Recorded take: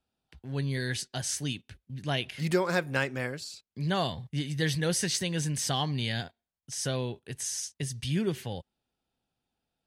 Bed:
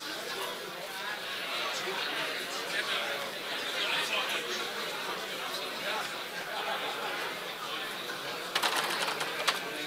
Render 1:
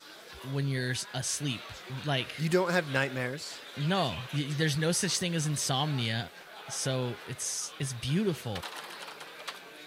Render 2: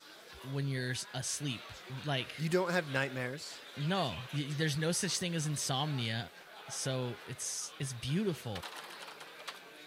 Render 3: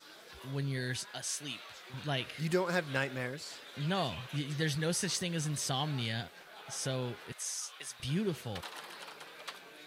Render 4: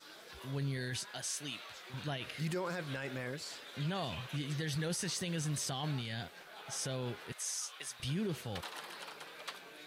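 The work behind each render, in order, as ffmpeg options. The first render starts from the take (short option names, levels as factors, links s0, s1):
-filter_complex "[1:a]volume=0.266[s0];[0:a][s0]amix=inputs=2:normalize=0"
-af "volume=0.596"
-filter_complex "[0:a]asettb=1/sr,asplit=3[s0][s1][s2];[s0]atrim=end=1.114[s3];[s1]atrim=start=1.11:end=1.94,asetpts=PTS-STARTPTS,afade=t=in:d=0.004:c=qsin,afade=t=out:st=0.826:d=0.004:c=qsin,highpass=f=510:p=1[s4];[s2]atrim=start=1.936[s5];[s3][s4]acrossfade=d=0.004:c1=hsin:c2=qsin[s6];[s6][s5]acrossfade=d=0.004:c1=qsin:c2=hsin,asettb=1/sr,asplit=3[s7][s8][s9];[s7]atrim=end=7.324[s10];[s8]atrim=start=7.32:end=8,asetpts=PTS-STARTPTS,afade=t=in:d=0.004:c=qsin,afade=t=out:st=0.676:d=0.004:c=qsin,highpass=710[s11];[s9]atrim=start=7.996[s12];[s10][s11]acrossfade=d=0.004:c1=hsin:c2=qsin[s13];[s13][s12]acrossfade=d=0.004:c1=qsin:c2=hsin"
-af "alimiter=level_in=1.78:limit=0.0631:level=0:latency=1:release=15,volume=0.562"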